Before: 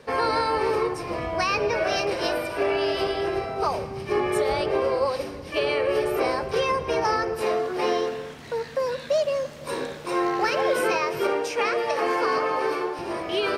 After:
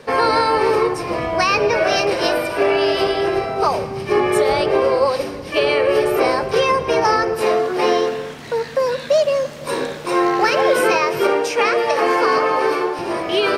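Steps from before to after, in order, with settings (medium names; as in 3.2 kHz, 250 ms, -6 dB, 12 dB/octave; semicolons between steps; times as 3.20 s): peaking EQ 64 Hz -7.5 dB 0.87 oct; trim +7.5 dB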